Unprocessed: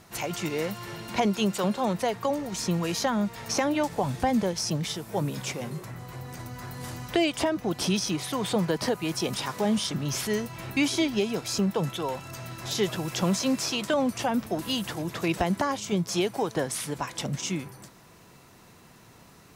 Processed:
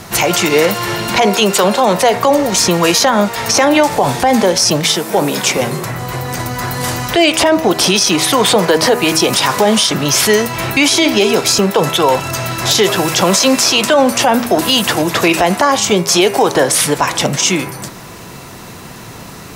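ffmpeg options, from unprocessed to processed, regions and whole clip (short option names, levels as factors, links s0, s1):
-filter_complex "[0:a]asettb=1/sr,asplit=3[s0][s1][s2];[s0]atrim=end=4.854[s3];[s1]atrim=start=4.85:end=5.57,asetpts=PTS-STARTPTS,afade=t=in:d=0.004:c=qsin,afade=t=out:st=0.716:d=0.004:c=qsin,highpass=f=170:w=0.5412,highpass=f=170:w=1.3066,volume=8.41,asoftclip=hard,volume=0.119[s4];[s2]atrim=start=5.566[s5];[s3][s4]acrossfade=d=0.004:c1=hsin:c2=qsin[s6];[s6][s5]acrossfade=d=0.004:c1=qsin:c2=hsin,bandreject=f=80.1:t=h:w=4,bandreject=f=160.2:t=h:w=4,bandreject=f=240.3:t=h:w=4,bandreject=f=320.4:t=h:w=4,bandreject=f=400.5:t=h:w=4,bandreject=f=480.6:t=h:w=4,bandreject=f=560.7:t=h:w=4,bandreject=f=640.8:t=h:w=4,bandreject=f=720.9:t=h:w=4,bandreject=f=801:t=h:w=4,bandreject=f=881.1:t=h:w=4,bandreject=f=961.2:t=h:w=4,bandreject=f=1041.3:t=h:w=4,bandreject=f=1121.4:t=h:w=4,bandreject=f=1201.5:t=h:w=4,bandreject=f=1281.6:t=h:w=4,bandreject=f=1361.7:t=h:w=4,bandreject=f=1441.8:t=h:w=4,bandreject=f=1521.9:t=h:w=4,bandreject=f=1602:t=h:w=4,bandreject=f=1682.1:t=h:w=4,bandreject=f=1762.2:t=h:w=4,bandreject=f=1842.3:t=h:w=4,bandreject=f=1922.4:t=h:w=4,bandreject=f=2002.5:t=h:w=4,bandreject=f=2082.6:t=h:w=4,bandreject=f=2162.7:t=h:w=4,bandreject=f=2242.8:t=h:w=4,bandreject=f=2322.9:t=h:w=4,bandreject=f=2403:t=h:w=4,bandreject=f=2483.1:t=h:w=4,bandreject=f=2563.2:t=h:w=4,bandreject=f=2643.3:t=h:w=4,bandreject=f=2723.4:t=h:w=4,bandreject=f=2803.5:t=h:w=4,acrossover=split=340|3000[s7][s8][s9];[s7]acompressor=threshold=0.00562:ratio=3[s10];[s10][s8][s9]amix=inputs=3:normalize=0,alimiter=level_in=13.3:limit=0.891:release=50:level=0:latency=1,volume=0.891"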